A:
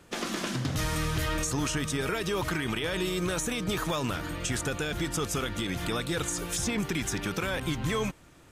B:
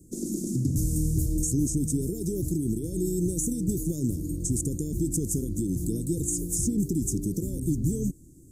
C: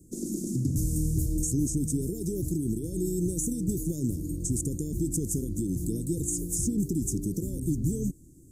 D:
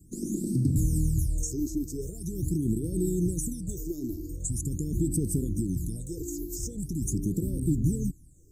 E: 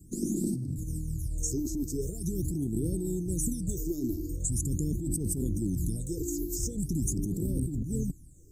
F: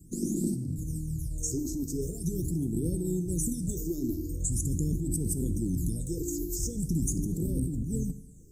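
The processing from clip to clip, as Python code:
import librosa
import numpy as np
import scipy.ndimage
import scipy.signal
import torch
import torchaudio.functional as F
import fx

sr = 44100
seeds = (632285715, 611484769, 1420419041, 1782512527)

y1 = scipy.signal.sosfilt(scipy.signal.ellip(3, 1.0, 50, [330.0, 7300.0], 'bandstop', fs=sr, output='sos'), x)
y1 = y1 * 10.0 ** (6.0 / 20.0)
y2 = fx.peak_eq(y1, sr, hz=1800.0, db=-11.0, octaves=0.71)
y2 = y2 * 10.0 ** (-1.5 / 20.0)
y3 = fx.phaser_stages(y2, sr, stages=12, low_hz=160.0, high_hz=2400.0, hz=0.43, feedback_pct=50)
y4 = fx.over_compress(y3, sr, threshold_db=-30.0, ratio=-1.0)
y5 = fx.rev_fdn(y4, sr, rt60_s=0.97, lf_ratio=1.0, hf_ratio=0.9, size_ms=36.0, drr_db=10.5)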